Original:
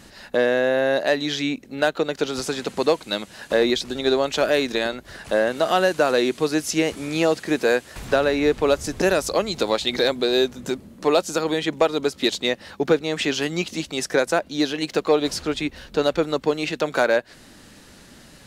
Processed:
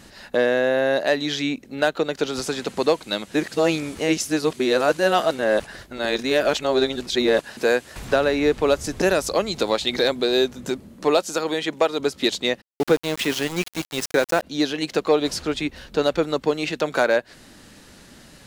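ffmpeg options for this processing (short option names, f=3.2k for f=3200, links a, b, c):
-filter_complex "[0:a]asettb=1/sr,asplit=3[a][b][c];[a]atrim=end=11.174[d];[b]atrim=start=11.17:end=12,asetpts=PTS-STARTPTS,afade=t=in:d=0.004:c=qsin,afade=t=out:st=0.826:d=0.004:c=qsin,lowshelf=f=180:g=-10[e];[c]atrim=start=11.996[f];[d][e]acrossfade=d=0.004:c1=hsin:c2=qsin[g];[g][f]acrossfade=d=0.004:c1=qsin:c2=hsin,asplit=3[h][i][j];[h]afade=t=out:st=12.6:d=0.02[k];[i]aeval=exprs='val(0)*gte(abs(val(0)),0.0473)':c=same,afade=t=in:st=12.6:d=0.02,afade=t=out:st=14.42:d=0.02[l];[j]afade=t=in:st=14.42:d=0.02[m];[k][l][m]amix=inputs=3:normalize=0,asplit=3[n][o][p];[n]atrim=end=3.342[q];[o]atrim=start=3.338:end=7.572,asetpts=PTS-STARTPTS,areverse[r];[p]atrim=start=7.568[s];[q][r]acrossfade=d=0.004:c1=hsin:c2=hsin[t];[t][s]acrossfade=d=0.004:c1=hsin:c2=hsin"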